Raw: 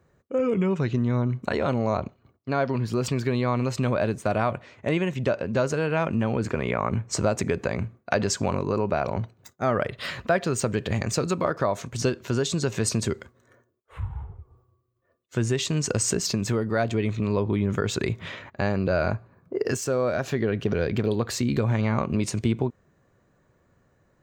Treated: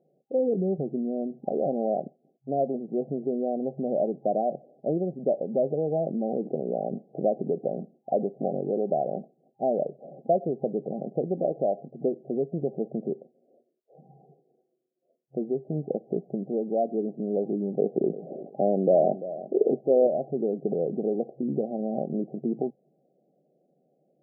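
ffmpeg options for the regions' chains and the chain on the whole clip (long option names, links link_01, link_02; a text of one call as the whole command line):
ffmpeg -i in.wav -filter_complex "[0:a]asettb=1/sr,asplit=3[link_01][link_02][link_03];[link_01]atrim=end=17.794[link_04];[link_02]atrim=start=17.79:end=20.07,asetpts=PTS-STARTPTS,afade=type=in:duration=0.004:curve=qsin,afade=type=out:start_time=2.276:duration=0.004:curve=qsin,highpass=170,acontrast=31,aecho=1:1:343|686:0.188|0.0414,atrim=end_sample=100548[link_05];[link_03]atrim=start=20.066[link_06];[link_04][link_05]acrossfade=duration=0.004:curve1=hsin:curve2=qsin[link_07];[link_07][link_06]acrossfade=duration=0.004:curve1=qsin:curve2=hsin,afftfilt=real='re*between(b*sr/4096,130,800)':imag='im*between(b*sr/4096,130,800)':win_size=4096:overlap=0.75,aemphasis=mode=production:type=bsi,volume=1.5dB" out.wav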